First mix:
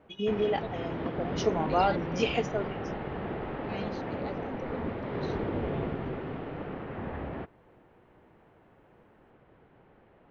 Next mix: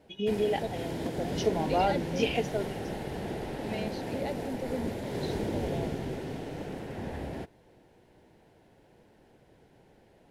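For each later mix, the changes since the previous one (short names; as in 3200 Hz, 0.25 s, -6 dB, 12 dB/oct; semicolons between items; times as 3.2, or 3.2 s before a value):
second voice +5.5 dB; background: remove LPF 2900 Hz 24 dB/oct; master: add bell 1200 Hz -13.5 dB 0.36 oct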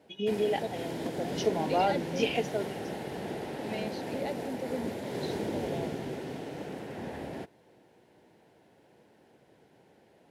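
master: add Bessel high-pass 160 Hz, order 2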